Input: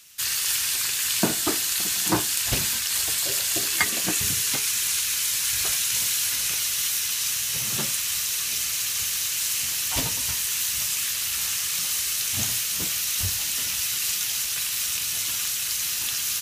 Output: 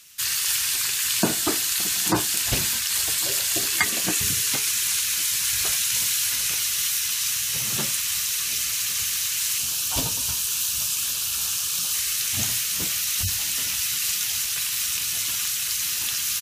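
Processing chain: spectral gate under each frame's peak -25 dB strong; 9.58–11.94 bell 2000 Hz -13.5 dB 0.33 oct; echo 1.109 s -23 dB; gain +1 dB

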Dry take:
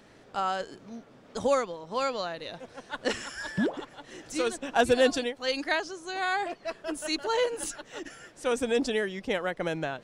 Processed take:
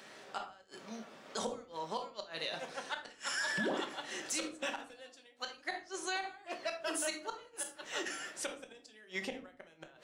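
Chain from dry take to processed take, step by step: HPF 990 Hz 6 dB/oct; flipped gate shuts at -24 dBFS, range -32 dB; shoebox room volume 260 m³, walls furnished, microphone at 1.1 m; limiter -31.5 dBFS, peak gain reduction 10.5 dB; gain +5.5 dB

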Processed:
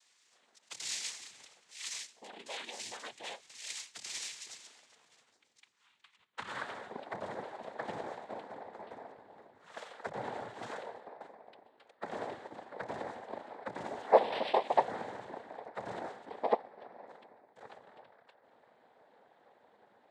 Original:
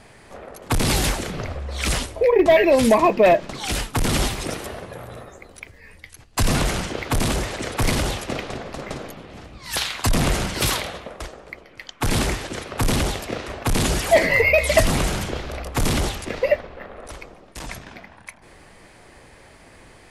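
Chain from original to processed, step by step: band-pass sweep 4700 Hz -> 690 Hz, 5.78–6.92; noise vocoder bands 6; 5.29–6.49 tilt -2 dB/oct; gain -8 dB

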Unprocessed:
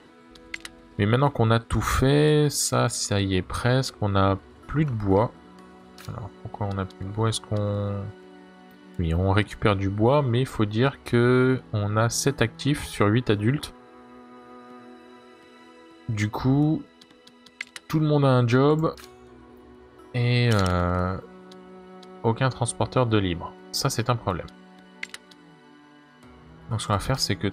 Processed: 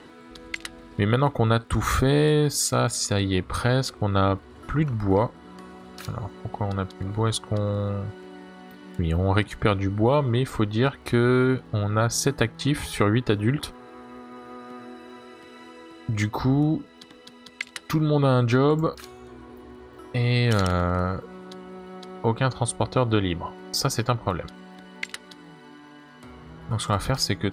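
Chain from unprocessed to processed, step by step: in parallel at +1 dB: compressor, threshold -33 dBFS, peak gain reduction 17 dB; on the sum: crackle 34/s -52 dBFS; gain -2 dB

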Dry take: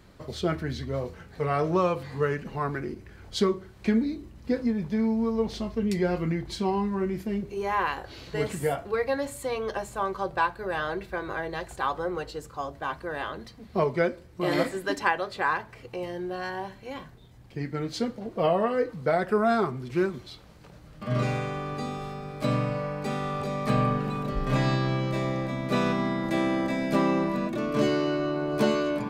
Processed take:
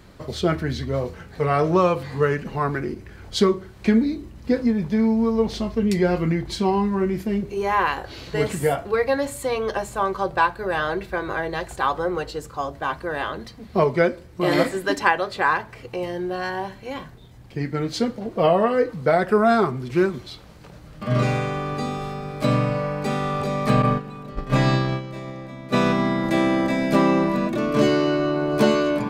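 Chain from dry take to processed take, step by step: 23.82–25.83 gate -25 dBFS, range -12 dB; gain +6 dB

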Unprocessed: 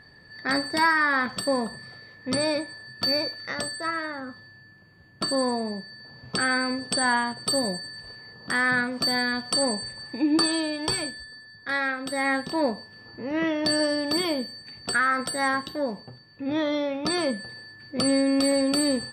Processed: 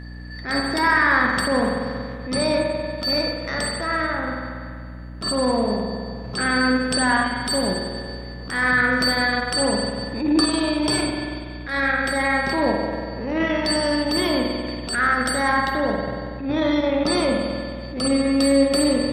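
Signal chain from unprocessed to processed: in parallel at 0 dB: limiter -21.5 dBFS, peak gain reduction 10.5 dB; on the sum: spring tank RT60 2.1 s, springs 47 ms, chirp 45 ms, DRR 0 dB; hum 60 Hz, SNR 14 dB; transient shaper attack -10 dB, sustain -6 dB

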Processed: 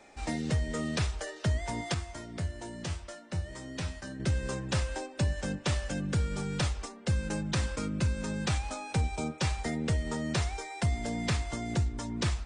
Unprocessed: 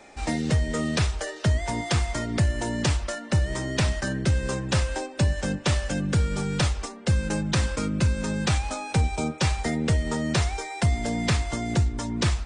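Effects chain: 1.94–4.2 resonator 86 Hz, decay 0.22 s, harmonics all, mix 80%; gain -6.5 dB

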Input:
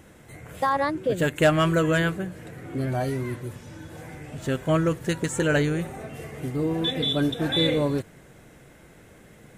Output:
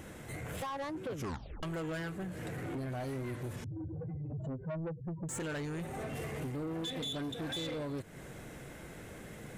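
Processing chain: 1.09 tape stop 0.54 s; 3.64–5.29 spectral contrast raised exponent 3.8; compressor 5:1, threshold -35 dBFS, peak gain reduction 15.5 dB; soft clip -37.5 dBFS, distortion -10 dB; gain +3 dB

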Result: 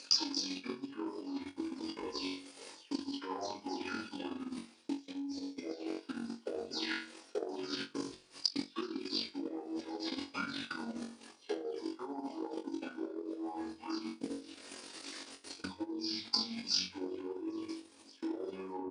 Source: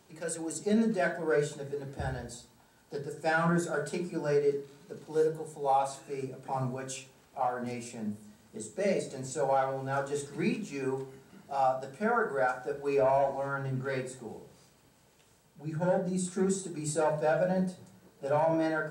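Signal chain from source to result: spectral delay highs early, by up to 0.174 s; pitch shift -9 st; level quantiser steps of 22 dB; LPF 8200 Hz 12 dB/oct; resonant low shelf 200 Hz -11.5 dB, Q 3; flutter echo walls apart 3.7 m, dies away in 0.41 s; reverse; compressor 12:1, threshold -49 dBFS, peak gain reduction 21 dB; reverse; transient shaper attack +10 dB, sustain -6 dB; tilt +3 dB/oct; gain +13.5 dB

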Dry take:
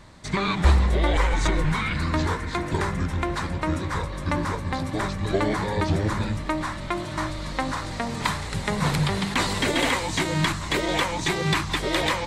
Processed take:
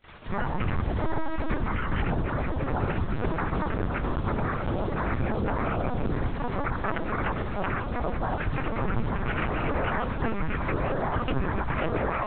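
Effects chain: steep low-pass 1800 Hz 36 dB/oct; limiter -17 dBFS, peak gain reduction 10 dB; compressor 16:1, threshold -25 dBFS, peak gain reduction 6 dB; grains 0.1 s, grains 32/s, pitch spread up and down by 7 st; requantised 8-bit, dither none; pre-echo 78 ms -22.5 dB; LPC vocoder at 8 kHz pitch kept; gain +6 dB

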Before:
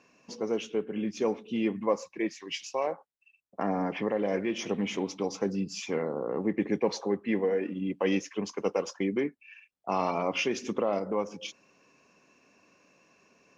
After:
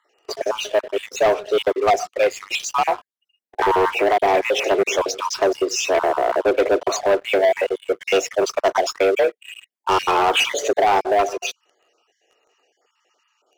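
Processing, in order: random spectral dropouts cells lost 33%; frequency shift +190 Hz; sample leveller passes 3; gain +5.5 dB

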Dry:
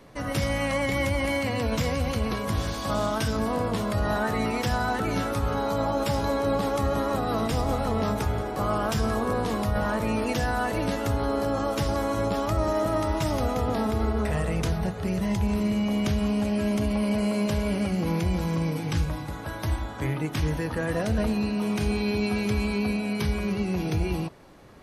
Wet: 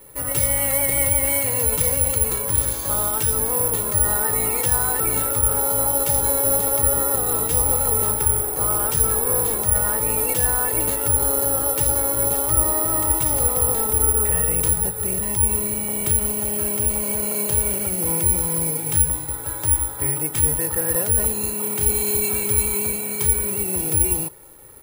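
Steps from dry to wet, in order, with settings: comb 2.2 ms, depth 62%; careless resampling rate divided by 4×, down filtered, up zero stuff; gain -1.5 dB

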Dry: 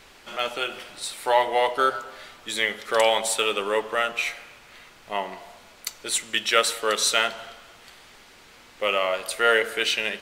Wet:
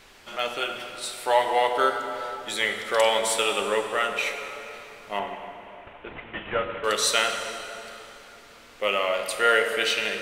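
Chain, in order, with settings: 5.19–6.84 CVSD 16 kbps; plate-style reverb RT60 3.3 s, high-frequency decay 0.7×, DRR 5 dB; gain -1.5 dB

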